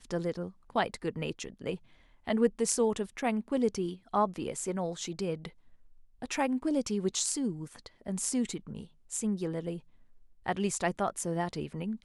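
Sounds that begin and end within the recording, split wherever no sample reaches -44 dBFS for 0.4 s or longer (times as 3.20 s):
2.27–5.49 s
6.22–9.79 s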